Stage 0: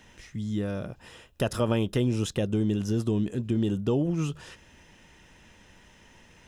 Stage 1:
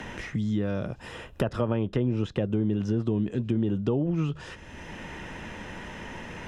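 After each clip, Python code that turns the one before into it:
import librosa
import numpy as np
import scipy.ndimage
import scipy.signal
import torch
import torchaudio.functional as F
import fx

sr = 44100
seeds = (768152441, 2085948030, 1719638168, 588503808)

y = fx.env_lowpass_down(x, sr, base_hz=1800.0, full_db=-21.5)
y = fx.band_squash(y, sr, depth_pct=70)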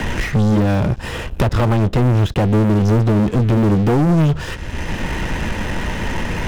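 y = fx.low_shelf(x, sr, hz=95.0, db=12.0)
y = fx.leveller(y, sr, passes=5)
y = fx.upward_expand(y, sr, threshold_db=-24.0, expansion=1.5)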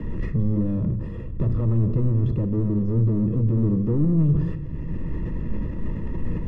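y = scipy.signal.lfilter(np.full(58, 1.0 / 58), 1.0, x)
y = fx.room_shoebox(y, sr, seeds[0], volume_m3=1300.0, walls='mixed', distance_m=0.59)
y = fx.sustainer(y, sr, db_per_s=51.0)
y = y * 10.0 ** (-6.5 / 20.0)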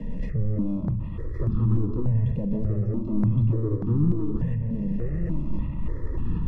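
y = x + 10.0 ** (-5.5 / 20.0) * np.pad(x, (int(1115 * sr / 1000.0), 0))[:len(x)]
y = fx.phaser_held(y, sr, hz=3.4, low_hz=350.0, high_hz=2100.0)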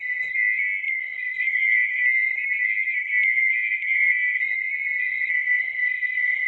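y = fx.band_swap(x, sr, width_hz=2000)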